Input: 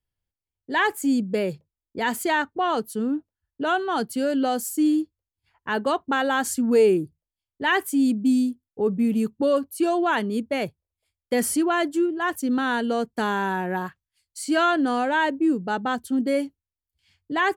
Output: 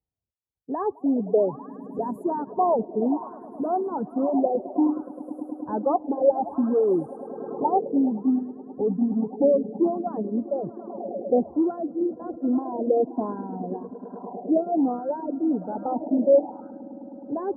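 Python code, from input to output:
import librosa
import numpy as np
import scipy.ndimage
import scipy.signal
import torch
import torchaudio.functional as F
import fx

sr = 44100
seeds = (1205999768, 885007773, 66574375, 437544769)

y = fx.spec_ripple(x, sr, per_octave=1.4, drift_hz=-1.7, depth_db=9)
y = 10.0 ** (-14.5 / 20.0) * np.tanh(y / 10.0 ** (-14.5 / 20.0))
y = scipy.signal.sosfilt(scipy.signal.butter(2, 65.0, 'highpass', fs=sr, output='sos'), y)
y = fx.high_shelf(y, sr, hz=12000.0, db=-8.5)
y = fx.echo_swell(y, sr, ms=105, loudest=5, wet_db=-14)
y = fx.filter_lfo_lowpass(y, sr, shape='sine', hz=0.6, low_hz=600.0, high_hz=3700.0, q=2.5)
y = fx.cheby2_bandstop(y, sr, low_hz=2000.0, high_hz=fx.steps((0.0, 5200.0), (8.12, 9900.0)), order=4, stop_db=60)
y = fx.dereverb_blind(y, sr, rt60_s=1.9)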